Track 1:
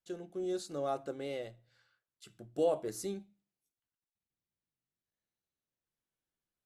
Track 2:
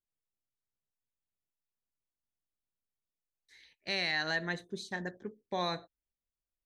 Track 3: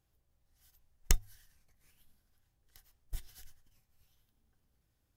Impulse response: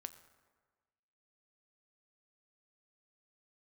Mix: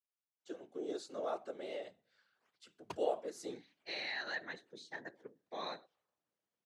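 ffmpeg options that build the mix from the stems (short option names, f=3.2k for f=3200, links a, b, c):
-filter_complex "[0:a]adelay=400,volume=3dB[a];[1:a]bandreject=f=50:t=h:w=6,bandreject=f=100:t=h:w=6,bandreject=f=150:t=h:w=6,bandreject=f=200:t=h:w=6,volume=-2.5dB,asplit=3[b][c][d];[c]volume=-19.5dB[e];[2:a]acrusher=samples=22:mix=1:aa=0.000001:lfo=1:lforange=35.2:lforate=0.92,adelay=1800,volume=-4.5dB[f];[d]apad=whole_len=307243[g];[f][g]sidechaincompress=threshold=-55dB:ratio=8:attack=16:release=111[h];[3:a]atrim=start_sample=2205[i];[e][i]afir=irnorm=-1:irlink=0[j];[a][b][h][j]amix=inputs=4:normalize=0,afftfilt=real='hypot(re,im)*cos(2*PI*random(0))':imag='hypot(re,im)*sin(2*PI*random(1))':win_size=512:overlap=0.75,highpass=330,lowpass=6.6k"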